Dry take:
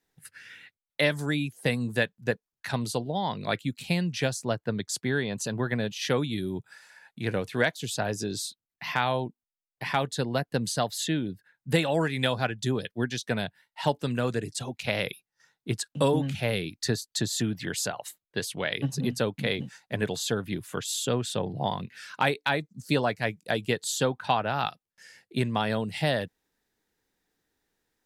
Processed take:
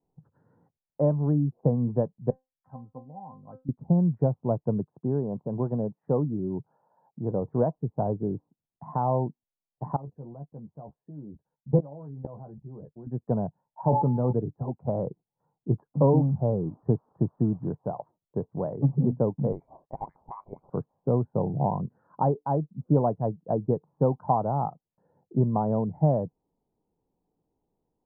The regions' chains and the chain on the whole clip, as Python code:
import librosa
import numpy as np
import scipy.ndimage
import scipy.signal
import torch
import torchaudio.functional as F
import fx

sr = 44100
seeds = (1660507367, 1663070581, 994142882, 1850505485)

y = fx.chain(x, sr, fx.peak_eq(hz=410.0, db=-9.5, octaves=2.1),
    fx.comb_fb(f0_hz=260.0, decay_s=0.21, harmonics='all', damping=0.0, mix_pct=90), at=(2.3, 3.69))
y = fx.chain(y, sr, fx.highpass(hz=760.0, slope=6),
    fx.tilt_eq(slope=-4.0), at=(4.84, 7.42))
y = fx.chain(y, sr, fx.lowpass(hz=8800.0, slope=12),
    fx.level_steps(step_db=23),
    fx.doubler(ms=14.0, db=-5.5), at=(9.96, 13.07))
y = fx.comb_fb(y, sr, f0_hz=63.0, decay_s=0.21, harmonics='all', damping=0.0, mix_pct=40, at=(13.81, 14.31), fade=0.02)
y = fx.dmg_tone(y, sr, hz=860.0, level_db=-44.0, at=(13.81, 14.31), fade=0.02)
y = fx.sustainer(y, sr, db_per_s=24.0, at=(13.81, 14.31), fade=0.02)
y = fx.chain(y, sr, fx.crossing_spikes(level_db=-27.0),
    fx.peak_eq(hz=2000.0, db=-9.0, octaves=0.21), at=(15.94, 17.69))
y = fx.chain(y, sr, fx.peak_eq(hz=89.0, db=-8.5, octaves=2.0),
    fx.freq_invert(carrier_hz=2500), at=(19.52, 20.7))
y = scipy.signal.sosfilt(scipy.signal.butter(8, 1000.0, 'lowpass', fs=sr, output='sos'), y)
y = fx.peak_eq(y, sr, hz=150.0, db=6.0, octaves=0.65)
y = F.gain(torch.from_numpy(y), 2.0).numpy()